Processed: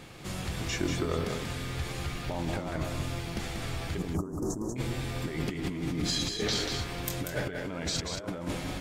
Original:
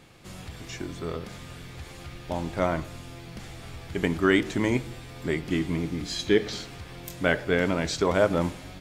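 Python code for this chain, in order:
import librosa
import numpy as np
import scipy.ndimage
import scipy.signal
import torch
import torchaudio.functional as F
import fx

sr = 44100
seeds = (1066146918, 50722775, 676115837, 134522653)

y = fx.cheby1_bandstop(x, sr, low_hz=1100.0, high_hz=6100.0, order=3, at=(3.98, 4.76))
y = fx.over_compress(y, sr, threshold_db=-34.0, ratio=-1.0)
y = y + 10.0 ** (-5.5 / 20.0) * np.pad(y, (int(188 * sr / 1000.0), 0))[:len(y)]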